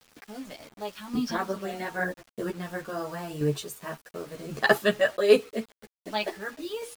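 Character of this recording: chopped level 0.88 Hz, depth 65%, duty 20%; a quantiser's noise floor 10-bit, dither none; a shimmering, thickened sound

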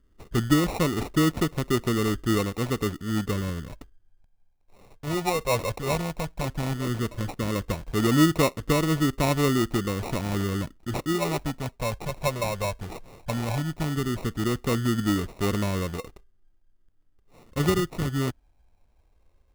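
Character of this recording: phasing stages 6, 0.14 Hz, lowest notch 290–1800 Hz; aliases and images of a low sample rate 1600 Hz, jitter 0%

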